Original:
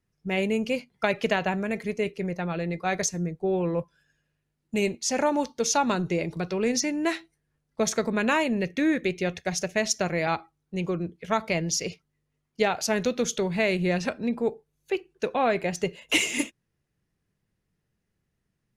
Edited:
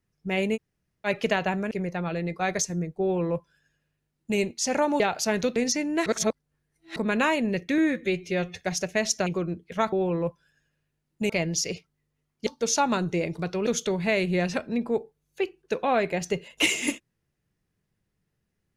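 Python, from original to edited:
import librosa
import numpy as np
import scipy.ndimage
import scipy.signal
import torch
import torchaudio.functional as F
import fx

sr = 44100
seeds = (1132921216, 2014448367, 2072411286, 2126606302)

y = fx.edit(x, sr, fx.room_tone_fill(start_s=0.56, length_s=0.5, crossfade_s=0.04),
    fx.cut(start_s=1.71, length_s=0.44),
    fx.duplicate(start_s=3.45, length_s=1.37, to_s=11.45),
    fx.swap(start_s=5.44, length_s=1.2, other_s=12.62, other_length_s=0.56),
    fx.reverse_span(start_s=7.14, length_s=0.9),
    fx.stretch_span(start_s=8.86, length_s=0.55, factor=1.5),
    fx.cut(start_s=10.07, length_s=0.72), tone=tone)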